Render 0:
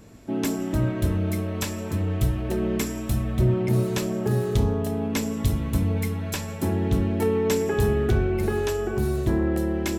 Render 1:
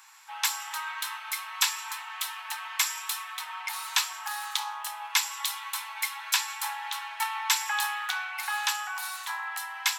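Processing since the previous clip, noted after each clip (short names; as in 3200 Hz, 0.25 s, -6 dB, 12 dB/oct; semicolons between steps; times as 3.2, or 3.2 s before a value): steep high-pass 820 Hz 96 dB/oct; dynamic EQ 3900 Hz, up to +5 dB, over -50 dBFS, Q 1.6; gain +5.5 dB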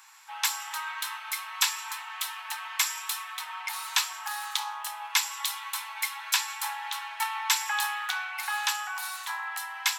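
nothing audible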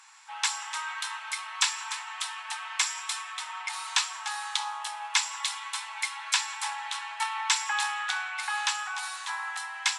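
split-band echo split 1600 Hz, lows 0.186 s, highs 0.296 s, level -13.5 dB; downsampling 22050 Hz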